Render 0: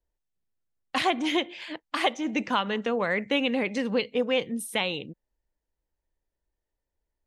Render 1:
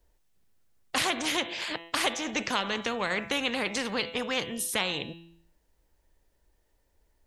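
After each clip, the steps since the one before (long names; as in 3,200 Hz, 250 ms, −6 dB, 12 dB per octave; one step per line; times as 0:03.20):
hum removal 167.6 Hz, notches 24
every bin compressed towards the loudest bin 2 to 1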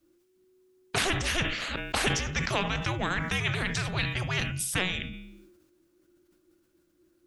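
frequency shifter −370 Hz
level that may fall only so fast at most 49 dB per second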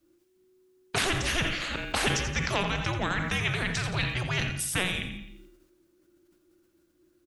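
repeating echo 86 ms, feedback 46%, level −10 dB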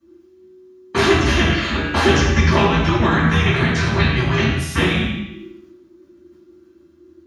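convolution reverb RT60 0.70 s, pre-delay 3 ms, DRR −10 dB
level −8 dB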